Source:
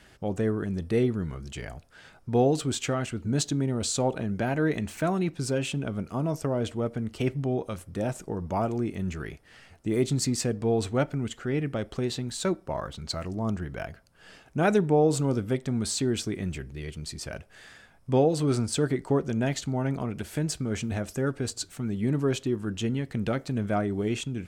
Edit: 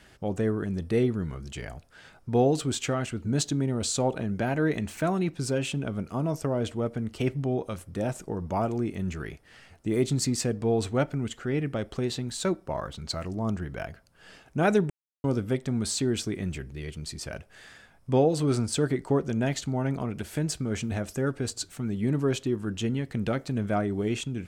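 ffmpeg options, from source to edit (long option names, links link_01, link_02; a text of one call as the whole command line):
ffmpeg -i in.wav -filter_complex "[0:a]asplit=3[link_01][link_02][link_03];[link_01]atrim=end=14.9,asetpts=PTS-STARTPTS,afade=type=out:start_time=14.896:duration=0.004:curve=hsin[link_04];[link_02]atrim=start=14.9:end=15.24,asetpts=PTS-STARTPTS,volume=0[link_05];[link_03]atrim=start=15.24,asetpts=PTS-STARTPTS,afade=type=in:duration=0.004:curve=hsin[link_06];[link_04][link_05][link_06]concat=n=3:v=0:a=1" out.wav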